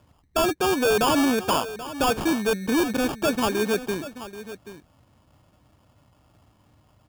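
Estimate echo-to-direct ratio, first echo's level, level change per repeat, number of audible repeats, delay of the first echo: -14.0 dB, -14.0 dB, no regular repeats, 1, 782 ms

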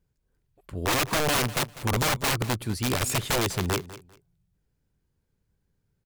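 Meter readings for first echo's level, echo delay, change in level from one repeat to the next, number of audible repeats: -16.5 dB, 198 ms, -13.0 dB, 2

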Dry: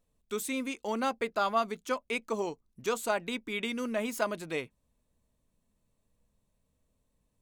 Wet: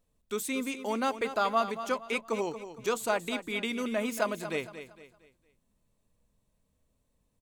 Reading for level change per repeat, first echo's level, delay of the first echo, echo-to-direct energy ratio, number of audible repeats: -9.0 dB, -11.5 dB, 230 ms, -11.0 dB, 3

